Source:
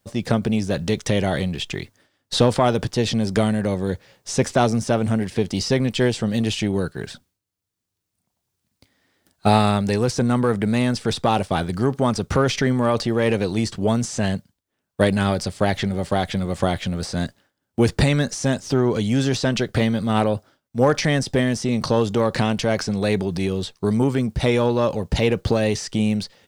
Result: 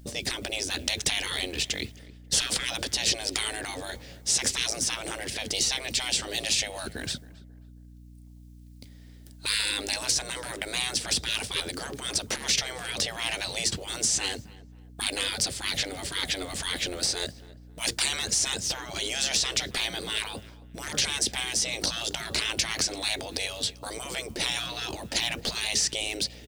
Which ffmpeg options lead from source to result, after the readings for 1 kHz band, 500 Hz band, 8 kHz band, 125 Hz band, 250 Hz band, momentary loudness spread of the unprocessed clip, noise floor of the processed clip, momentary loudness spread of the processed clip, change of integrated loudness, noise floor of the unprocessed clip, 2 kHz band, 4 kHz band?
-13.5 dB, -17.5 dB, +6.5 dB, -20.0 dB, -20.5 dB, 7 LU, -49 dBFS, 9 LU, -6.0 dB, -79 dBFS, -2.5 dB, +3.5 dB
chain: -filter_complex "[0:a]highpass=58,afftfilt=real='re*lt(hypot(re,im),0.112)':imag='im*lt(hypot(re,im),0.112)':win_size=1024:overlap=0.75,equalizer=f=1.1k:t=o:w=1.7:g=-12,aeval=exprs='val(0)+0.00178*(sin(2*PI*60*n/s)+sin(2*PI*2*60*n/s)/2+sin(2*PI*3*60*n/s)/3+sin(2*PI*4*60*n/s)/4+sin(2*PI*5*60*n/s)/5)':c=same,asplit=2[a][b];[b]adelay=270,lowpass=f=1.6k:p=1,volume=-18.5dB,asplit=2[c][d];[d]adelay=270,lowpass=f=1.6k:p=1,volume=0.38,asplit=2[e][f];[f]adelay=270,lowpass=f=1.6k:p=1,volume=0.38[g];[a][c][e][g]amix=inputs=4:normalize=0,volume=8dB"

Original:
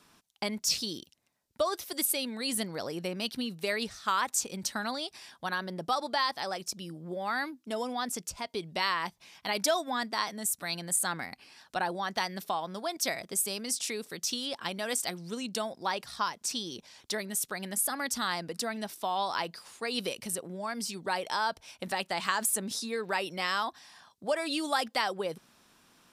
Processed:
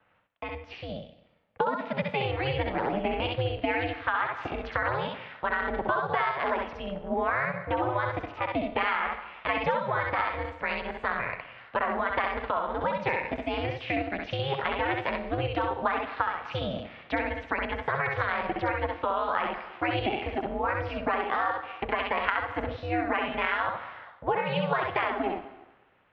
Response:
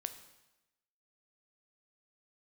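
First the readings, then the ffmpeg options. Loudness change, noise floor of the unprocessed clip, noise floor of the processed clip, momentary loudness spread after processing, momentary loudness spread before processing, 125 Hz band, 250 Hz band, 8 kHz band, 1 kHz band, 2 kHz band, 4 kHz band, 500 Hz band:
+2.5 dB, -68 dBFS, -57 dBFS, 6 LU, 8 LU, +10.5 dB, +3.0 dB, under -40 dB, +5.0 dB, +5.5 dB, -5.5 dB, +5.5 dB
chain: -filter_complex "[0:a]dynaudnorm=f=160:g=13:m=13dB,highpass=f=220:t=q:w=0.5412,highpass=f=220:t=q:w=1.307,lowpass=f=2.6k:t=q:w=0.5176,lowpass=f=2.6k:t=q:w=0.7071,lowpass=f=2.6k:t=q:w=1.932,afreqshift=63,asplit=2[a][b];[1:a]atrim=start_sample=2205,highshelf=f=6.1k:g=11,adelay=65[c];[b][c]afir=irnorm=-1:irlink=0,volume=-2.5dB[d];[a][d]amix=inputs=2:normalize=0,acompressor=threshold=-21dB:ratio=6,aeval=exprs='val(0)*sin(2*PI*200*n/s)':c=same"

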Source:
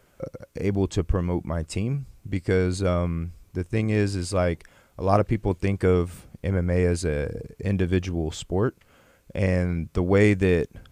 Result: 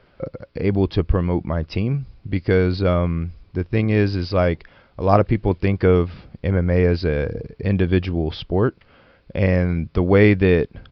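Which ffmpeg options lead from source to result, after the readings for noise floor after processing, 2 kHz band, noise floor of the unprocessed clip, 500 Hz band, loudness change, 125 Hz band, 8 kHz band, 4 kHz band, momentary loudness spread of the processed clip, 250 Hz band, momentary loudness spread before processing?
-56 dBFS, +5.0 dB, -60 dBFS, +5.0 dB, +5.0 dB, +5.0 dB, under -20 dB, +4.5 dB, 11 LU, +5.0 dB, 11 LU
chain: -af "aresample=11025,aresample=44100,volume=5dB"

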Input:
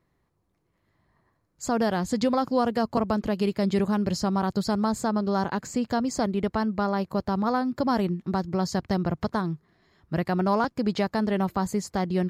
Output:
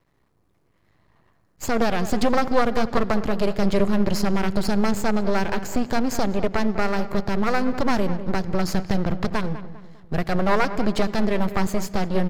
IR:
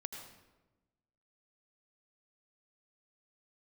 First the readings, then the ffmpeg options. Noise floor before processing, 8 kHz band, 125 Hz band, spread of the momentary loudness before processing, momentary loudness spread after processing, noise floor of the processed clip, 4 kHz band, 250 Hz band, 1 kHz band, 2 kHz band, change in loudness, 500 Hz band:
-73 dBFS, +3.0 dB, +2.5 dB, 4 LU, 5 LU, -65 dBFS, +4.0 dB, +2.0 dB, +2.0 dB, +7.0 dB, +2.5 dB, +3.5 dB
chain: -filter_complex "[0:a]aeval=exprs='max(val(0),0)':c=same,asplit=2[a][b];[b]adelay=200,lowpass=f=1.9k:p=1,volume=-12.5dB,asplit=2[c][d];[d]adelay=200,lowpass=f=1.9k:p=1,volume=0.43,asplit=2[e][f];[f]adelay=200,lowpass=f=1.9k:p=1,volume=0.43,asplit=2[g][h];[h]adelay=200,lowpass=f=1.9k:p=1,volume=0.43[i];[a][c][e][g][i]amix=inputs=5:normalize=0,asplit=2[j][k];[1:a]atrim=start_sample=2205,lowpass=7.3k[l];[k][l]afir=irnorm=-1:irlink=0,volume=-11dB[m];[j][m]amix=inputs=2:normalize=0,volume=7.5dB"

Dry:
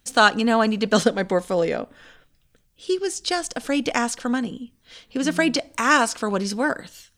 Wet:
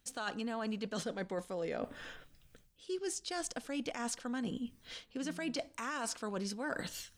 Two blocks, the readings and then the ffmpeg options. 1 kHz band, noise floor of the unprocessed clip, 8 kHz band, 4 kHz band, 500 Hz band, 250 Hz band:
-20.0 dB, -64 dBFS, -12.0 dB, -16.5 dB, -17.0 dB, -16.0 dB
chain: -af "alimiter=limit=-12.5dB:level=0:latency=1:release=24,areverse,acompressor=threshold=-36dB:ratio=8,areverse"

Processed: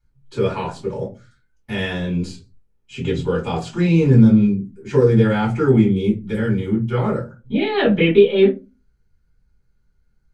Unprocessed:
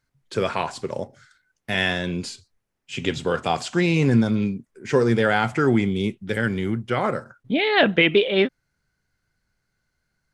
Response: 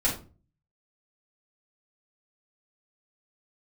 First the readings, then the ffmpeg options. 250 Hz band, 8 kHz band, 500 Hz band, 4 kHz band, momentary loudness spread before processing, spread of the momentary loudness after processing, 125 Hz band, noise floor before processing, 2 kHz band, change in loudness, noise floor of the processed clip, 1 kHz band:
+6.0 dB, n/a, +4.5 dB, -4.0 dB, 13 LU, 14 LU, +7.5 dB, -77 dBFS, -4.5 dB, +4.0 dB, -63 dBFS, -2.5 dB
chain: -filter_complex "[0:a]lowshelf=f=380:g=8[a];[1:a]atrim=start_sample=2205,asetrate=74970,aresample=44100[b];[a][b]afir=irnorm=-1:irlink=0,volume=-9.5dB"

